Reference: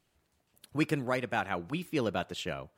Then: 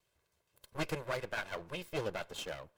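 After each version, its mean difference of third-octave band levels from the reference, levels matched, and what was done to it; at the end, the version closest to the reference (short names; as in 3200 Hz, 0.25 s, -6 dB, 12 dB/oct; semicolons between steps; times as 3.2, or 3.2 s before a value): 6.0 dB: minimum comb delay 1.9 ms; low shelf 100 Hz -6 dB; gain -2 dB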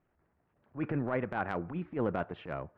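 8.0 dB: LPF 1800 Hz 24 dB/oct; transient shaper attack -12 dB, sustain +3 dB; gain +1.5 dB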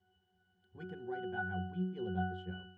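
14.0 dB: in parallel at -7.5 dB: requantised 8-bit, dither triangular; on the sum: octave resonator F#, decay 0.61 s; gain +8 dB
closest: first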